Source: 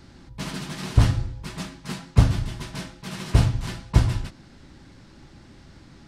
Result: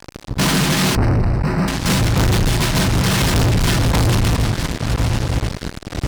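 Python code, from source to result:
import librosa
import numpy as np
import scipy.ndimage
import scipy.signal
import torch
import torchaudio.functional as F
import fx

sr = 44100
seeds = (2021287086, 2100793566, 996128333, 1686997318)

y = fx.reverse_delay_fb(x, sr, ms=519, feedback_pct=61, wet_db=-13)
y = fx.fuzz(y, sr, gain_db=41.0, gate_db=-42.0)
y = fx.moving_average(y, sr, points=13, at=(0.95, 1.68))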